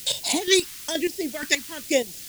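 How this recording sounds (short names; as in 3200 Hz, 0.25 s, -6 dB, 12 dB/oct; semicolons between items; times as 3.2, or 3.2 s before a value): chopped level 2.1 Hz, depth 65%, duty 25%; a quantiser's noise floor 8-bit, dither triangular; phasing stages 2, 1.1 Hz, lowest notch 580–1200 Hz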